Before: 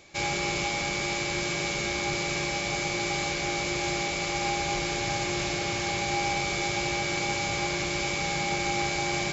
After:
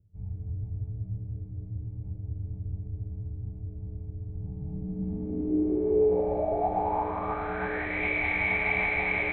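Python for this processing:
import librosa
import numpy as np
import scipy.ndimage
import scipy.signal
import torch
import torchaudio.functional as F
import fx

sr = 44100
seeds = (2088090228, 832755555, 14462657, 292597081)

y = fx.high_shelf(x, sr, hz=2400.0, db=-9.0)
y = fx.pitch_keep_formants(y, sr, semitones=-11.0)
y = fx.air_absorb(y, sr, metres=75.0)
y = fx.echo_bbd(y, sr, ms=200, stages=1024, feedback_pct=61, wet_db=-4.5)
y = fx.filter_sweep_lowpass(y, sr, from_hz=110.0, to_hz=2200.0, start_s=4.33, end_s=8.06, q=6.8)
y = y * librosa.db_to_amplitude(-3.0)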